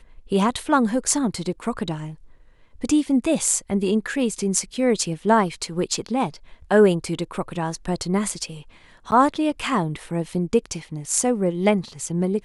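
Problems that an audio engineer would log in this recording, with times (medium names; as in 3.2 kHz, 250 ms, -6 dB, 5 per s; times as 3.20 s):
9.11–9.12 s: dropout 9.7 ms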